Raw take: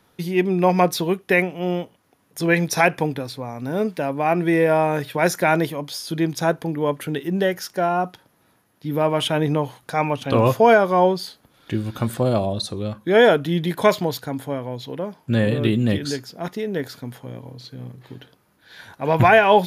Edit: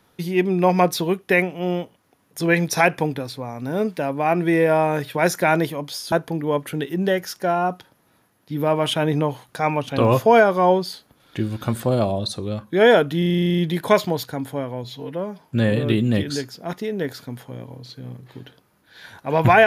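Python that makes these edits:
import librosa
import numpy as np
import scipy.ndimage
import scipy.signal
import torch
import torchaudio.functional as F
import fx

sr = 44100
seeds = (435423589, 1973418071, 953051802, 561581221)

y = fx.edit(x, sr, fx.cut(start_s=6.12, length_s=0.34),
    fx.stutter(start_s=13.52, slice_s=0.04, count=11),
    fx.stretch_span(start_s=14.78, length_s=0.38, factor=1.5), tone=tone)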